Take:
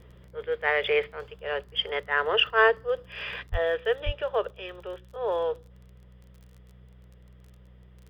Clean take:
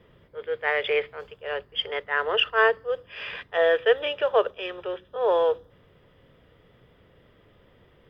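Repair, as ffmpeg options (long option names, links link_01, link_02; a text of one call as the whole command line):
ffmpeg -i in.wav -filter_complex "[0:a]adeclick=threshold=4,bandreject=frequency=61.9:width_type=h:width=4,bandreject=frequency=123.8:width_type=h:width=4,bandreject=frequency=185.7:width_type=h:width=4,asplit=3[link_01][link_02][link_03];[link_01]afade=type=out:start_time=3.51:duration=0.02[link_04];[link_02]highpass=frequency=140:width=0.5412,highpass=frequency=140:width=1.3066,afade=type=in:start_time=3.51:duration=0.02,afade=type=out:start_time=3.63:duration=0.02[link_05];[link_03]afade=type=in:start_time=3.63:duration=0.02[link_06];[link_04][link_05][link_06]amix=inputs=3:normalize=0,asplit=3[link_07][link_08][link_09];[link_07]afade=type=out:start_time=4.05:duration=0.02[link_10];[link_08]highpass=frequency=140:width=0.5412,highpass=frequency=140:width=1.3066,afade=type=in:start_time=4.05:duration=0.02,afade=type=out:start_time=4.17:duration=0.02[link_11];[link_09]afade=type=in:start_time=4.17:duration=0.02[link_12];[link_10][link_11][link_12]amix=inputs=3:normalize=0,asetnsamples=nb_out_samples=441:pad=0,asendcmd='3.47 volume volume 6dB',volume=0dB" out.wav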